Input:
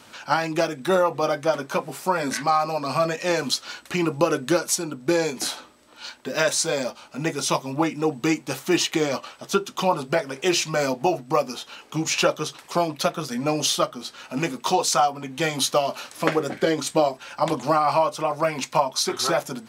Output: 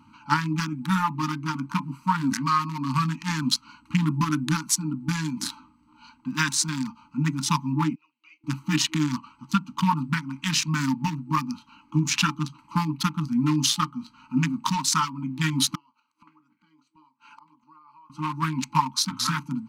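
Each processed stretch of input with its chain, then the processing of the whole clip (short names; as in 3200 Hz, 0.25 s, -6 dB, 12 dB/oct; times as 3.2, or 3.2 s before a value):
7.95–8.44 ladder band-pass 3200 Hz, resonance 40% + air absorption 73 m
15.75–18.1 weighting filter A + flipped gate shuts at -25 dBFS, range -25 dB
whole clip: Wiener smoothing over 25 samples; FFT band-reject 320–860 Hz; dynamic EQ 170 Hz, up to +6 dB, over -41 dBFS, Q 0.88; gain +1.5 dB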